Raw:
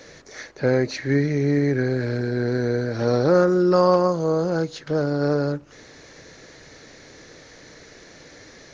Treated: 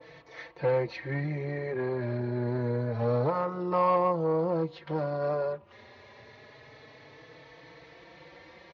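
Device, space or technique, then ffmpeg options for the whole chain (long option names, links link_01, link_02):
barber-pole flanger into a guitar amplifier: -filter_complex "[0:a]asplit=2[link_01][link_02];[link_02]adelay=4.1,afreqshift=0.27[link_03];[link_01][link_03]amix=inputs=2:normalize=1,asoftclip=type=tanh:threshold=-17.5dB,highpass=89,equalizer=frequency=180:width_type=q:width=4:gain=-5,equalizer=frequency=270:width_type=q:width=4:gain=-9,equalizer=frequency=410:width_type=q:width=4:gain=-4,equalizer=frequency=970:width_type=q:width=4:gain=7,equalizer=frequency=1500:width_type=q:width=4:gain=-8,lowpass=frequency=3500:width=0.5412,lowpass=frequency=3500:width=1.3066,adynamicequalizer=threshold=0.00562:dfrequency=1600:dqfactor=0.7:tfrequency=1600:tqfactor=0.7:attack=5:release=100:ratio=0.375:range=2.5:mode=cutabove:tftype=highshelf"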